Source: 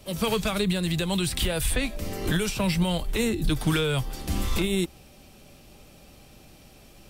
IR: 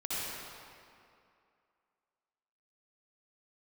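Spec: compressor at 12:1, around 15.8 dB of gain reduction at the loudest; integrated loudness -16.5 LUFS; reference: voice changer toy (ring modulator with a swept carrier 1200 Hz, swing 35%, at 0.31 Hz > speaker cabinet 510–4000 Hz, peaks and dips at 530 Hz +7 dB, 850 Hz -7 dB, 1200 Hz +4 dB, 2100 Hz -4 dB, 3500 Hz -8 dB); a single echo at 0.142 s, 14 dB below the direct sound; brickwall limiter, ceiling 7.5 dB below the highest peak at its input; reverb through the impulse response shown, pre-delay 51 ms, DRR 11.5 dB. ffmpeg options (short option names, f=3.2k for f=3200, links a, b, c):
-filter_complex "[0:a]acompressor=threshold=-36dB:ratio=12,alimiter=level_in=7.5dB:limit=-24dB:level=0:latency=1,volume=-7.5dB,aecho=1:1:142:0.2,asplit=2[a][b];[1:a]atrim=start_sample=2205,adelay=51[c];[b][c]afir=irnorm=-1:irlink=0,volume=-17.5dB[d];[a][d]amix=inputs=2:normalize=0,aeval=exprs='val(0)*sin(2*PI*1200*n/s+1200*0.35/0.31*sin(2*PI*0.31*n/s))':c=same,highpass=510,equalizer=f=530:t=q:w=4:g=7,equalizer=f=850:t=q:w=4:g=-7,equalizer=f=1.2k:t=q:w=4:g=4,equalizer=f=2.1k:t=q:w=4:g=-4,equalizer=f=3.5k:t=q:w=4:g=-8,lowpass=f=4k:w=0.5412,lowpass=f=4k:w=1.3066,volume=28dB"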